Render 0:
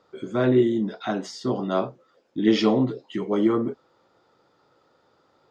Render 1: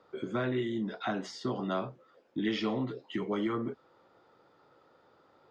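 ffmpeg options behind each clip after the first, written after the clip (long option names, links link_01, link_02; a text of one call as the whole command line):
ffmpeg -i in.wav -filter_complex "[0:a]bass=frequency=250:gain=-2,treble=frequency=4000:gain=-9,acrossover=split=170|1200[link_01][link_02][link_03];[link_01]acompressor=threshold=-39dB:ratio=4[link_04];[link_02]acompressor=threshold=-34dB:ratio=4[link_05];[link_03]acompressor=threshold=-36dB:ratio=4[link_06];[link_04][link_05][link_06]amix=inputs=3:normalize=0" out.wav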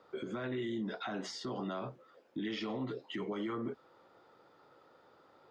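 ffmpeg -i in.wav -af "lowshelf=frequency=200:gain=-4,alimiter=level_in=7dB:limit=-24dB:level=0:latency=1:release=73,volume=-7dB,volume=1dB" out.wav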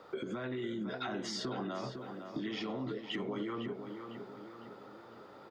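ffmpeg -i in.wav -filter_complex "[0:a]acompressor=threshold=-44dB:ratio=6,asplit=2[link_01][link_02];[link_02]adelay=505,lowpass=frequency=2900:poles=1,volume=-7.5dB,asplit=2[link_03][link_04];[link_04]adelay=505,lowpass=frequency=2900:poles=1,volume=0.53,asplit=2[link_05][link_06];[link_06]adelay=505,lowpass=frequency=2900:poles=1,volume=0.53,asplit=2[link_07][link_08];[link_08]adelay=505,lowpass=frequency=2900:poles=1,volume=0.53,asplit=2[link_09][link_10];[link_10]adelay=505,lowpass=frequency=2900:poles=1,volume=0.53,asplit=2[link_11][link_12];[link_12]adelay=505,lowpass=frequency=2900:poles=1,volume=0.53[link_13];[link_01][link_03][link_05][link_07][link_09][link_11][link_13]amix=inputs=7:normalize=0,volume=8dB" out.wav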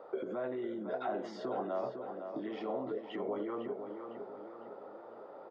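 ffmpeg -i in.wav -af "bandpass=frequency=610:width_type=q:width=1.9:csg=0,volume=8dB" out.wav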